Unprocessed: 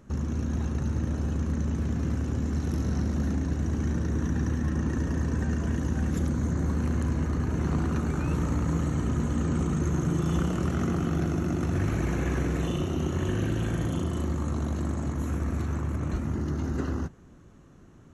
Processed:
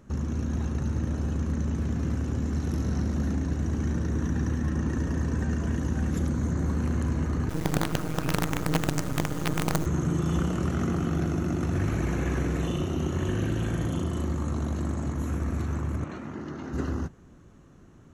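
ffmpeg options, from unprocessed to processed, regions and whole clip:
-filter_complex "[0:a]asettb=1/sr,asplit=3[a][b][c];[a]atrim=end=7.494[d];[b]atrim=start=7.49:end=9.86,asetpts=PTS-STARTPTS,afade=t=in:d=0.004:c=qsin,afade=t=out:st=2.366:d=0.004:c=qsin,aecho=1:1:6.4:0.77,atrim=end_sample=104517,acrusher=bits=4:dc=4:mix=0:aa=0.000001[e];[c]atrim=start=9.856[f];[d][e]acrossfade=d=0.004:c1=hsin:c2=qsin[g];[g][f]acrossfade=d=0.004:c1=qsin:c2=hsin,asettb=1/sr,asplit=3[h][i][j];[h]atrim=end=16.044[k];[i]atrim=start=16.04:end=16.73,asetpts=PTS-STARTPTS,afade=t=in:d=0.004:c=qsin,afade=t=out:st=0.686:d=0.004:c=qsin,highpass=100,lowpass=2.9k,aemphasis=mode=production:type=bsi[l];[j]atrim=start=16.726[m];[k][l]acrossfade=d=0.004:c1=hsin:c2=qsin[n];[n][m]acrossfade=d=0.004:c1=qsin:c2=hsin"

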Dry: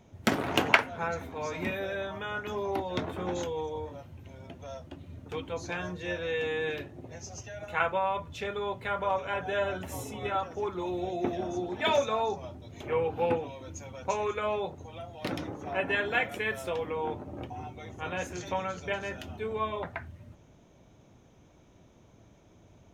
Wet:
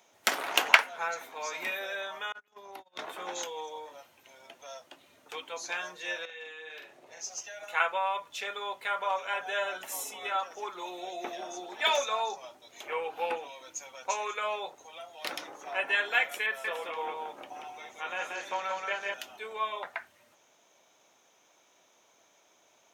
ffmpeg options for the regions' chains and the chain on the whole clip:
-filter_complex "[0:a]asettb=1/sr,asplit=3[a][b][c];[a]atrim=end=2.324[d];[b]atrim=start=2.32:end=2.99,asetpts=PTS-STARTPTS,afade=t=in:d=0.004:c=qsin,afade=t=out:st=0.666:d=0.004:c=qsin,agate=range=-36dB:threshold=-32dB:ratio=16:release=100:detection=peak,bass=f=250:g=10,treble=f=4k:g=1,acompressor=threshold=-39dB:ratio=3:attack=3.2:release=140:knee=1:detection=peak[e];[c]atrim=start=2.986[f];[d][e]acrossfade=d=0.004:c1=hsin:c2=qsin[g];[g][f]acrossfade=d=0.004:c1=qsin:c2=hsin,asettb=1/sr,asplit=3[h][i][j];[h]atrim=end=6.254[k];[i]atrim=start=6.25:end=7.21,asetpts=PTS-STARTPTS,afade=t=in:d=0.004:c=qsin,afade=t=out:st=0.956:d=0.004:c=qsin,acompressor=threshold=-40dB:ratio=12:attack=3.2:release=140:knee=1:detection=peak,highshelf=f=8.1k:g=-7,asplit=2[l][m];[m]adelay=44,volume=-4dB[n];[l][n]amix=inputs=2:normalize=0,atrim=end_sample=42336[o];[j]atrim=start=7.206[p];[k][o]acrossfade=d=0.004:c1=hsin:c2=qsin[q];[q][p]acrossfade=d=0.004:c1=qsin:c2=hsin,asettb=1/sr,asplit=3[r][s][t];[r]atrim=end=16.464[u];[s]atrim=start=16.46:end=19.14,asetpts=PTS-STARTPTS,afade=t=in:d=0.004:c=qsin,afade=t=out:st=2.676:d=0.004:c=qsin,acrossover=split=3300[v][w];[w]acompressor=threshold=-60dB:ratio=4:attack=1:release=60[x];[v][x]amix=inputs=2:normalize=0,aecho=1:1:182:0.708,atrim=end_sample=118188[y];[t]atrim=start=19.136[z];[u][y]acrossfade=d=0.004:c1=hsin:c2=qsin[aa];[aa][z]acrossfade=d=0.004:c1=qsin:c2=hsin,highpass=750,highshelf=f=4k:g=8,volume=1dB"

